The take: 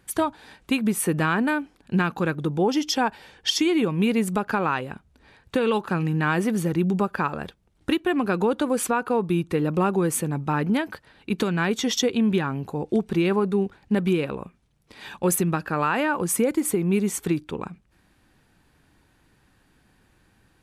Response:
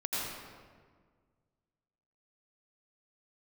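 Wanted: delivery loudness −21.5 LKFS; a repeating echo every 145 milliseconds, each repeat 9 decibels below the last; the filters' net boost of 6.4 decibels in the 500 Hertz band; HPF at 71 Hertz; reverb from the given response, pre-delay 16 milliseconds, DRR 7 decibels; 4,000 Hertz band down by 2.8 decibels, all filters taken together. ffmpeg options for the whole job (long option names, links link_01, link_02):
-filter_complex "[0:a]highpass=71,equalizer=frequency=500:width_type=o:gain=8,equalizer=frequency=4000:width_type=o:gain=-4,aecho=1:1:145|290|435|580:0.355|0.124|0.0435|0.0152,asplit=2[link_01][link_02];[1:a]atrim=start_sample=2205,adelay=16[link_03];[link_02][link_03]afir=irnorm=-1:irlink=0,volume=-13dB[link_04];[link_01][link_04]amix=inputs=2:normalize=0,volume=-1.5dB"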